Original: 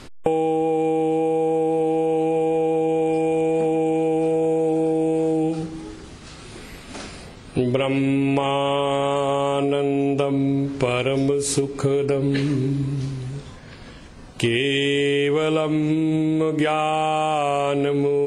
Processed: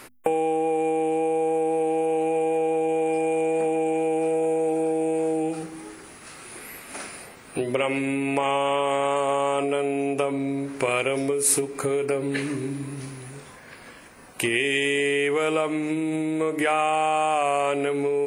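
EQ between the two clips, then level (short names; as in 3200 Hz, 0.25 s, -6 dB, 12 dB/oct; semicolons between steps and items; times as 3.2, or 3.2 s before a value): RIAA curve recording; band shelf 5000 Hz -12 dB; notches 50/100/150/200/250 Hz; 0.0 dB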